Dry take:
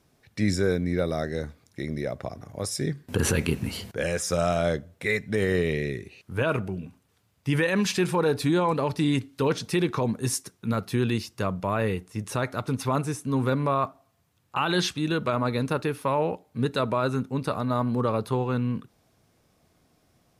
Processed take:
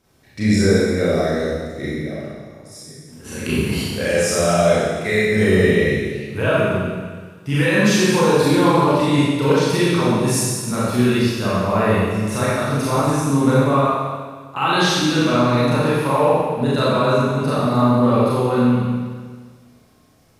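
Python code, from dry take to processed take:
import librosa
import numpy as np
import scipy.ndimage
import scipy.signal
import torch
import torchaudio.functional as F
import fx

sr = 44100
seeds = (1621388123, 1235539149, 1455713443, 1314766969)

y = fx.auto_swell(x, sr, attack_ms=786.0, at=(1.92, 3.43), fade=0.02)
y = fx.rev_schroeder(y, sr, rt60_s=1.6, comb_ms=29, drr_db=-9.0)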